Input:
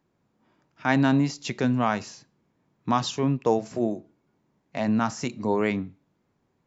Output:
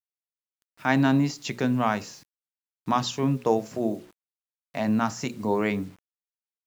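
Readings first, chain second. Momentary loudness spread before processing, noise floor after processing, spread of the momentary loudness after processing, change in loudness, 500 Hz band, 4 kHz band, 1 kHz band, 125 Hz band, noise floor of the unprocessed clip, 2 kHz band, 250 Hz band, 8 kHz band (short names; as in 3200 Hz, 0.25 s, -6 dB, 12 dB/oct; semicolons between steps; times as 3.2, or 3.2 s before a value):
13 LU, under -85 dBFS, 13 LU, -0.5 dB, -0.5 dB, 0.0 dB, 0.0 dB, -0.5 dB, -73 dBFS, 0.0 dB, -0.5 dB, n/a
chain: notches 60/120/180/240/300/360/420/480/540 Hz; bit-crush 9-bit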